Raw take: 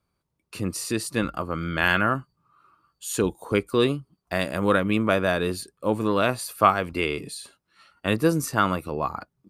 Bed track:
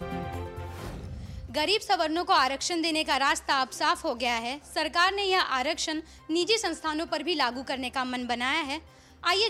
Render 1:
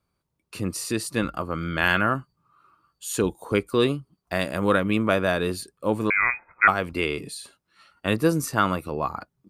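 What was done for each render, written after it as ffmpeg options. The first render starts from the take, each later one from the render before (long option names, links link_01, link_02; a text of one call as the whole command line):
ffmpeg -i in.wav -filter_complex "[0:a]asettb=1/sr,asplit=3[link_01][link_02][link_03];[link_01]atrim=end=6.104[link_04];[link_02]atrim=start=6.1:end=6.68,asetpts=PTS-STARTPTS,afade=type=in:duration=0.004:curve=qsin,afade=type=out:start_time=0.576:duration=0.004:curve=qsin,lowpass=frequency=2200:width_type=q:width=0.5098,lowpass=frequency=2200:width_type=q:width=0.6013,lowpass=frequency=2200:width_type=q:width=0.9,lowpass=frequency=2200:width_type=q:width=2.563,afreqshift=-2600[link_05];[link_03]atrim=start=6.676[link_06];[link_04][link_05]acrossfade=duration=0.004:curve1=hsin:curve2=qsin[link_07];[link_07][link_06]acrossfade=duration=0.004:curve1=qsin:curve2=hsin" out.wav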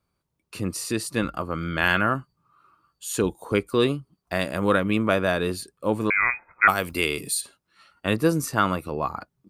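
ffmpeg -i in.wav -filter_complex "[0:a]asplit=3[link_01][link_02][link_03];[link_01]afade=type=out:start_time=6.68:duration=0.02[link_04];[link_02]aemphasis=mode=production:type=75fm,afade=type=in:start_time=6.68:duration=0.02,afade=type=out:start_time=7.4:duration=0.02[link_05];[link_03]afade=type=in:start_time=7.4:duration=0.02[link_06];[link_04][link_05][link_06]amix=inputs=3:normalize=0" out.wav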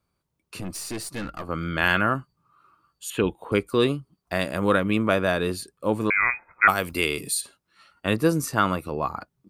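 ffmpeg -i in.wav -filter_complex "[0:a]asettb=1/sr,asplit=3[link_01][link_02][link_03];[link_01]atrim=end=0.604[link_04];[link_02]atrim=start=0.6:end=1.49,asetpts=PTS-STARTPTS,afade=type=in:duration=0.004:curve=qsin,afade=type=out:start_time=0.886:duration=0.004:curve=qsin,aeval=exprs='(tanh(22.4*val(0)+0.4)-tanh(0.4))/22.4':channel_layout=same[link_05];[link_03]atrim=start=1.486[link_06];[link_04][link_05]acrossfade=duration=0.004:curve1=hsin:curve2=qsin[link_07];[link_07][link_06]acrossfade=duration=0.004:curve1=qsin:curve2=hsin,asettb=1/sr,asplit=3[link_08][link_09][link_10];[link_08]atrim=end=3.104[link_11];[link_09]atrim=start=3.1:end=3.52,asetpts=PTS-STARTPTS,afade=type=in:duration=0.004:curve=qsin,afade=type=out:start_time=0.416:duration=0.004:curve=qsin,highshelf=frequency=4000:width_type=q:width=3:gain=-12[link_12];[link_10]atrim=start=3.516[link_13];[link_11][link_12]acrossfade=duration=0.004:curve1=hsin:curve2=qsin[link_14];[link_14][link_13]acrossfade=duration=0.004:curve1=qsin:curve2=hsin" out.wav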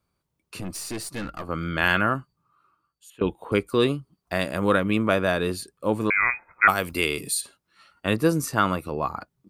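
ffmpeg -i in.wav -filter_complex "[0:a]asplit=2[link_01][link_02];[link_01]atrim=end=3.21,asetpts=PTS-STARTPTS,afade=type=out:start_time=2.05:duration=1.16:silence=0.0707946[link_03];[link_02]atrim=start=3.21,asetpts=PTS-STARTPTS,afade=type=in:duration=0.004:curve=hsin:silence=0.0707946[link_04];[link_03][link_04]concat=n=2:v=0:a=1" out.wav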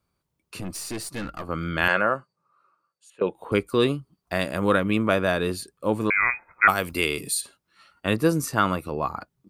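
ffmpeg -i in.wav -filter_complex "[0:a]asettb=1/sr,asplit=3[link_01][link_02][link_03];[link_01]atrim=end=1.884[link_04];[link_02]atrim=start=1.88:end=3.35,asetpts=PTS-STARTPTS,afade=type=in:duration=0.004:curve=qsin,afade=type=out:start_time=1.466:duration=0.004:curve=qsin,highpass=220,equalizer=frequency=280:width_type=q:width=4:gain=-9,equalizer=frequency=540:width_type=q:width=4:gain=9,equalizer=frequency=3200:width_type=q:width=4:gain=-9,equalizer=frequency=7200:width_type=q:width=4:gain=-4,lowpass=frequency=9100:width=0.5412,lowpass=frequency=9100:width=1.3066[link_05];[link_03]atrim=start=3.346[link_06];[link_04][link_05]acrossfade=duration=0.004:curve1=hsin:curve2=qsin[link_07];[link_07][link_06]acrossfade=duration=0.004:curve1=qsin:curve2=hsin" out.wav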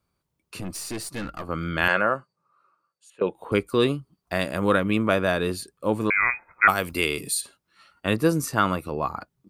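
ffmpeg -i in.wav -af anull out.wav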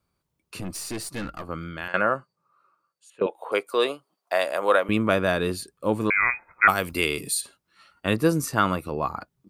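ffmpeg -i in.wav -filter_complex "[0:a]asettb=1/sr,asplit=3[link_01][link_02][link_03];[link_01]atrim=end=3.264[link_04];[link_02]atrim=start=3.26:end=4.89,asetpts=PTS-STARTPTS,afade=type=in:duration=0.004:curve=qsin,afade=type=out:start_time=1.626:duration=0.004:curve=qsin,highpass=frequency=610:width_type=q:width=1.9[link_05];[link_03]atrim=start=4.886[link_06];[link_04][link_05]acrossfade=duration=0.004:curve1=hsin:curve2=qsin[link_07];[link_07][link_06]acrossfade=duration=0.004:curve1=qsin:curve2=hsin,asplit=2[link_08][link_09];[link_08]atrim=end=1.94,asetpts=PTS-STARTPTS,afade=type=out:start_time=1.28:duration=0.66:silence=0.125893[link_10];[link_09]atrim=start=1.94,asetpts=PTS-STARTPTS,afade=type=in:duration=0.004:curve=hsin:silence=0.125893[link_11];[link_10][link_11]concat=n=2:v=0:a=1" out.wav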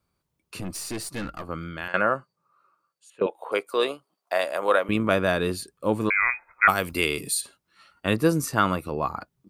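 ffmpeg -i in.wav -filter_complex "[0:a]asettb=1/sr,asplit=3[link_01][link_02][link_03];[link_01]atrim=end=3.304[link_04];[link_02]atrim=start=3.3:end=5.11,asetpts=PTS-STARTPTS,afade=type=in:duration=0.004:curve=qsin,afade=type=out:start_time=1.806:duration=0.004:curve=qsin,tremolo=f=66:d=0.261[link_05];[link_03]atrim=start=5.106[link_06];[link_04][link_05]acrossfade=duration=0.004:curve1=hsin:curve2=qsin[link_07];[link_07][link_06]acrossfade=duration=0.004:curve1=qsin:curve2=hsin,asettb=1/sr,asplit=3[link_08][link_09][link_10];[link_08]atrim=end=6.094[link_11];[link_09]atrim=start=6.09:end=6.68,asetpts=PTS-STARTPTS,afade=type=in:duration=0.004:curve=qsin,afade=type=out:start_time=0.586:duration=0.004:curve=qsin,equalizer=frequency=170:width_type=o:width=2.8:gain=-12[link_12];[link_10]atrim=start=6.676[link_13];[link_11][link_12]acrossfade=duration=0.004:curve1=hsin:curve2=qsin[link_14];[link_14][link_13]acrossfade=duration=0.004:curve1=qsin:curve2=hsin" out.wav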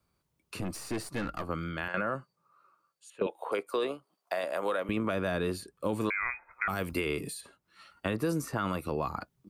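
ffmpeg -i in.wav -filter_complex "[0:a]alimiter=limit=-14.5dB:level=0:latency=1:release=12,acrossover=split=320|2200[link_01][link_02][link_03];[link_01]acompressor=threshold=-33dB:ratio=4[link_04];[link_02]acompressor=threshold=-31dB:ratio=4[link_05];[link_03]acompressor=threshold=-44dB:ratio=4[link_06];[link_04][link_05][link_06]amix=inputs=3:normalize=0" out.wav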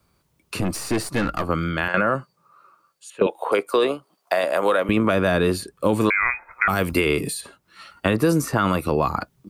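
ffmpeg -i in.wav -af "volume=11.5dB" out.wav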